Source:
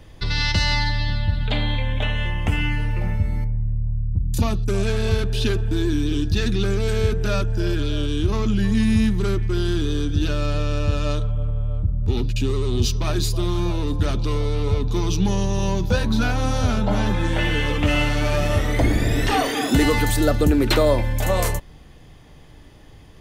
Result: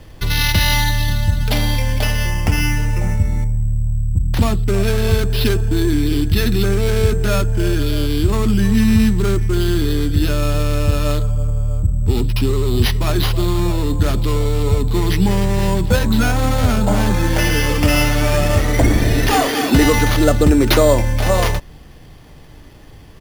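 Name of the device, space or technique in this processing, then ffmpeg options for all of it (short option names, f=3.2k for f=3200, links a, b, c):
crushed at another speed: -af "asetrate=35280,aresample=44100,acrusher=samples=7:mix=1:aa=0.000001,asetrate=55125,aresample=44100,volume=5dB"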